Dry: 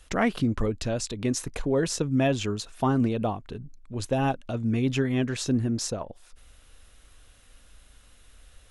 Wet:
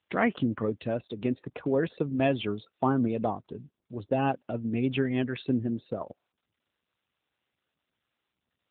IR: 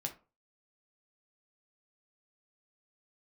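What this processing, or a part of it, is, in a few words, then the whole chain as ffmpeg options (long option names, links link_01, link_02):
mobile call with aggressive noise cancelling: -af "highpass=frequency=170:poles=1,afftdn=noise_reduction=34:noise_floor=-42" -ar 8000 -c:a libopencore_amrnb -b:a 10200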